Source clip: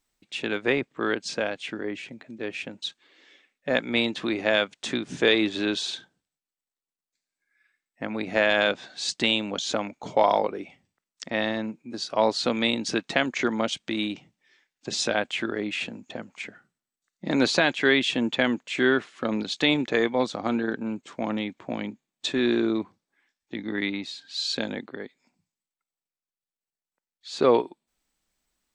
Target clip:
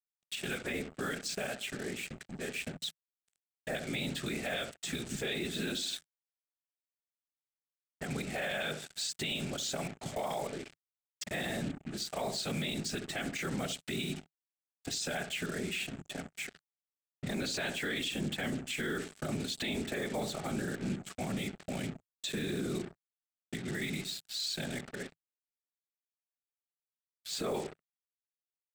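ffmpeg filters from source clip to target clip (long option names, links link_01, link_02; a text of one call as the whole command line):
ffmpeg -i in.wav -filter_complex "[0:a]asplit=2[link_01][link_02];[link_02]acompressor=threshold=-37dB:ratio=12,volume=-2dB[link_03];[link_01][link_03]amix=inputs=2:normalize=0,afftfilt=real='hypot(re,im)*cos(2*PI*random(0))':imag='hypot(re,im)*sin(2*PI*random(1))':win_size=512:overlap=0.75,asplit=2[link_04][link_05];[link_05]adelay=65,lowpass=frequency=800:poles=1,volume=-10dB,asplit=2[link_06][link_07];[link_07]adelay=65,lowpass=frequency=800:poles=1,volume=0.4,asplit=2[link_08][link_09];[link_09]adelay=65,lowpass=frequency=800:poles=1,volume=0.4,asplit=2[link_10][link_11];[link_11]adelay=65,lowpass=frequency=800:poles=1,volume=0.4[link_12];[link_04][link_06][link_08][link_10][link_12]amix=inputs=5:normalize=0,acrusher=bits=6:mix=0:aa=0.5,equalizer=frequency=100:width_type=o:width=0.33:gain=-4,equalizer=frequency=160:width_type=o:width=0.33:gain=4,equalizer=frequency=315:width_type=o:width=0.33:gain=-7,equalizer=frequency=500:width_type=o:width=0.33:gain=-6,equalizer=frequency=1000:width_type=o:width=0.33:gain=-12,equalizer=frequency=8000:width_type=o:width=0.33:gain=10,alimiter=level_in=2.5dB:limit=-24dB:level=0:latency=1:release=48,volume=-2.5dB" out.wav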